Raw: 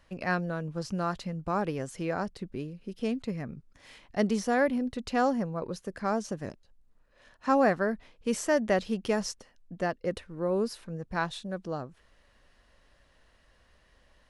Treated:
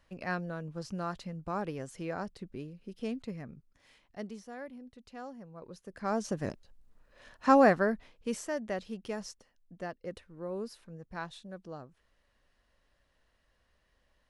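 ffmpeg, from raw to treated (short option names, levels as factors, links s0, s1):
-af "volume=6.31,afade=t=out:st=3.17:d=1.28:silence=0.223872,afade=t=in:st=5.4:d=0.5:silence=0.354813,afade=t=in:st=5.9:d=0.59:silence=0.237137,afade=t=out:st=7.47:d=1.04:silence=0.237137"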